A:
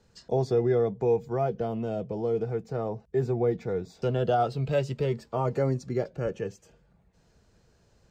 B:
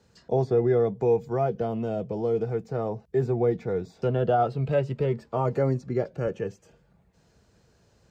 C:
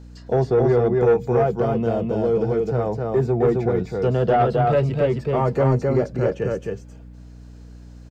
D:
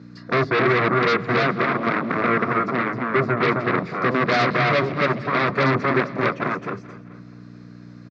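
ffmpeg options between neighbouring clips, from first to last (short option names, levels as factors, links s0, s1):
-filter_complex "[0:a]highpass=56,acrossover=split=2600[s0][s1];[s1]acompressor=threshold=0.001:ratio=6[s2];[s0][s2]amix=inputs=2:normalize=0,volume=1.26"
-af "aecho=1:1:263:0.708,asoftclip=type=tanh:threshold=0.158,aeval=exprs='val(0)+0.00501*(sin(2*PI*60*n/s)+sin(2*PI*2*60*n/s)/2+sin(2*PI*3*60*n/s)/3+sin(2*PI*4*60*n/s)/4+sin(2*PI*5*60*n/s)/5)':c=same,volume=2"
-af "aeval=exprs='0.316*(cos(1*acos(clip(val(0)/0.316,-1,1)))-cos(1*PI/2))+0.158*(cos(7*acos(clip(val(0)/0.316,-1,1)))-cos(7*PI/2))':c=same,highpass=f=130:w=0.5412,highpass=f=130:w=1.3066,equalizer=f=280:t=q:w=4:g=3,equalizer=f=480:t=q:w=4:g=-5,equalizer=f=830:t=q:w=4:g=-10,equalizer=f=1200:t=q:w=4:g=7,equalizer=f=2100:t=q:w=4:g=5,equalizer=f=3000:t=q:w=4:g=-10,lowpass=f=4700:w=0.5412,lowpass=f=4700:w=1.3066,aecho=1:1:216|432|648|864:0.126|0.0642|0.0327|0.0167,volume=0.75"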